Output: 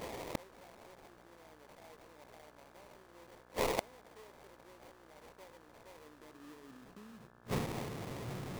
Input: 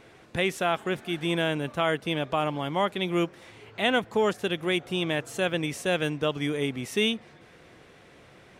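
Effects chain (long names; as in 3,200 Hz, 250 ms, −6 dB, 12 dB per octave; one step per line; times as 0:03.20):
linear delta modulator 16 kbit/s, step −36 dBFS
noise gate −39 dBFS, range −26 dB
low-shelf EQ 380 Hz +5 dB
in parallel at +2 dB: brickwall limiter −23.5 dBFS, peak gain reduction 10 dB
on the sum: transient designer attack −5 dB, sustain +10 dB
downward compressor 20 to 1, threshold −29 dBFS, peak gain reduction 14 dB
on a send: echo with a time of its own for lows and highs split 490 Hz, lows 133 ms, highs 282 ms, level −15 dB
on the sum: high-pass filter sweep 510 Hz → 110 Hz, 0:05.85–0:07.50
gate with flip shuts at −34 dBFS, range −40 dB
sample-rate reduction 1,500 Hz, jitter 20%
hum with harmonics 60 Hz, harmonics 29, −77 dBFS −1 dB per octave
level +13.5 dB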